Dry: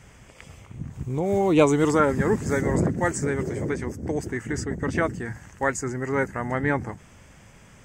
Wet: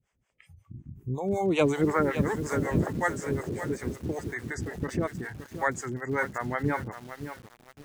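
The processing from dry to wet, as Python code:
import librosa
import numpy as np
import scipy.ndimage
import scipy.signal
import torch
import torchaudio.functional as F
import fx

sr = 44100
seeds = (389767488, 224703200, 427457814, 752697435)

y = fx.high_shelf_res(x, sr, hz=2700.0, db=-11.0, q=3.0, at=(1.81, 2.27))
y = fx.noise_reduce_blind(y, sr, reduce_db=23)
y = fx.harmonic_tremolo(y, sr, hz=5.4, depth_pct=100, crossover_hz=500.0)
y = fx.echo_crushed(y, sr, ms=569, feedback_pct=35, bits=7, wet_db=-10)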